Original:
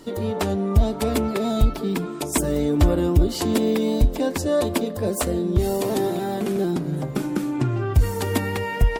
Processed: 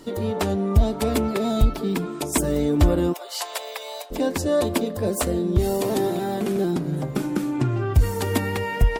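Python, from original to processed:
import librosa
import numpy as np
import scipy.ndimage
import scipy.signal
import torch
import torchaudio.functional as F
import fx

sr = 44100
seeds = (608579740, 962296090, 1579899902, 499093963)

y = fx.steep_highpass(x, sr, hz=610.0, slope=36, at=(3.12, 4.1), fade=0.02)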